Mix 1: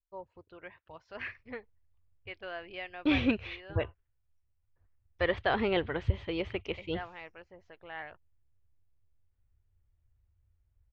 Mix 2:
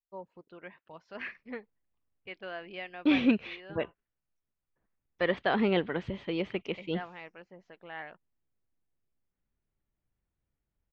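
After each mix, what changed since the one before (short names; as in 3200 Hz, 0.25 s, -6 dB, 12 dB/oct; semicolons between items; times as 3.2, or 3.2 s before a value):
master: add resonant low shelf 130 Hz -12 dB, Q 3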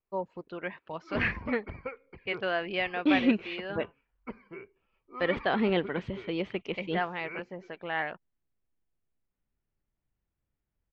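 first voice +10.5 dB; background: unmuted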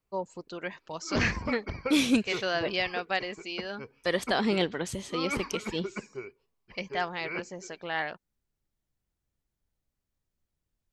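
second voice: entry -1.15 s; background +5.0 dB; master: remove LPF 2900 Hz 24 dB/oct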